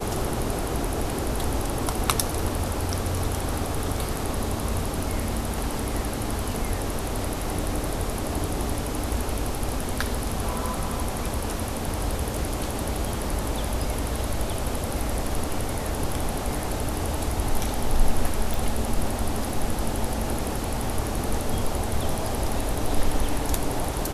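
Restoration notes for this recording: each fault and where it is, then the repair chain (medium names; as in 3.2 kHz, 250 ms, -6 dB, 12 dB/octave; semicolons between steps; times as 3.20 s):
18.54 s: pop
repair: de-click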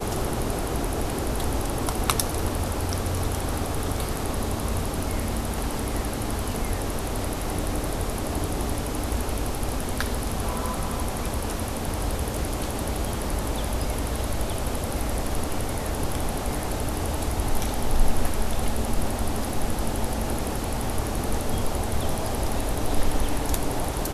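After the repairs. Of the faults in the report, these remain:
nothing left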